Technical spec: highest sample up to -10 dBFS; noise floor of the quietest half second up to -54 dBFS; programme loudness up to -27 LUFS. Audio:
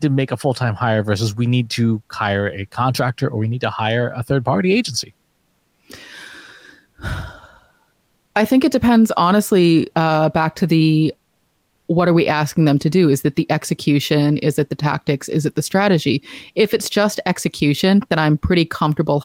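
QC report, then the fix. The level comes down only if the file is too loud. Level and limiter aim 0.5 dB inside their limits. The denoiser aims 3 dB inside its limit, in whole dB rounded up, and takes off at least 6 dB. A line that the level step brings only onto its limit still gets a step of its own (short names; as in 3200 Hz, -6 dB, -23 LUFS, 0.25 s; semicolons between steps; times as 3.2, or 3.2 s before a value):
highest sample -5.5 dBFS: fail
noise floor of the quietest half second -65 dBFS: OK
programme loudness -17.5 LUFS: fail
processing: gain -10 dB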